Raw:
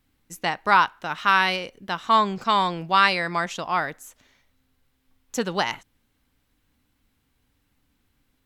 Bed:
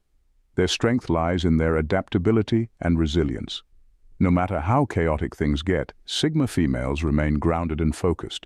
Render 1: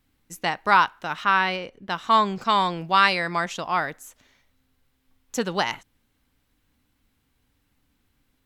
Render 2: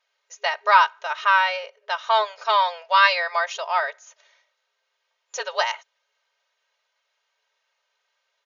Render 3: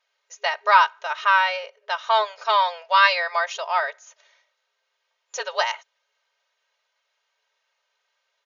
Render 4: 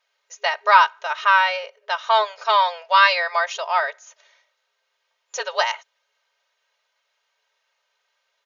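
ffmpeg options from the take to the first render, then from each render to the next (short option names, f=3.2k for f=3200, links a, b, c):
-filter_complex "[0:a]asettb=1/sr,asplit=3[a][b][c];[a]atrim=end=1.244[d];[b]atrim=start=1.24:end=1.9,asetpts=PTS-STARTPTS,afade=t=in:d=0.004:c=qsin,afade=t=out:st=0.656:d=0.004:c=qsin,lowpass=f=2.3k:p=1[e];[c]atrim=start=1.896[f];[d][e]acrossfade=d=0.004:c1=hsin:c2=qsin[g];[g][f]acrossfade=d=0.004:c1=qsin:c2=hsin"
-af "afftfilt=real='re*between(b*sr/4096,410,7100)':imag='im*between(b*sr/4096,410,7100)':win_size=4096:overlap=0.75,aecho=1:1:3.2:0.8"
-af anull
-af "volume=2dB,alimiter=limit=-1dB:level=0:latency=1"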